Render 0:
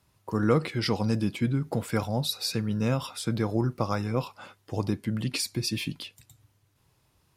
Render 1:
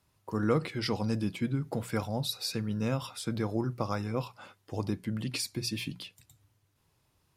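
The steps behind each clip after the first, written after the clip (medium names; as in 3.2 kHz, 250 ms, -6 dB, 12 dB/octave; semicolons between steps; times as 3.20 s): hum notches 60/120/180 Hz; trim -4 dB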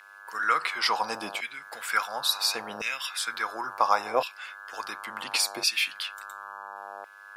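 mains buzz 100 Hz, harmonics 17, -51 dBFS -2 dB/octave; LFO high-pass saw down 0.71 Hz 660–2300 Hz; trim +8.5 dB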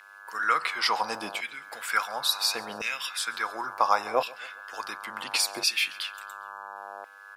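feedback delay 136 ms, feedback 51%, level -22.5 dB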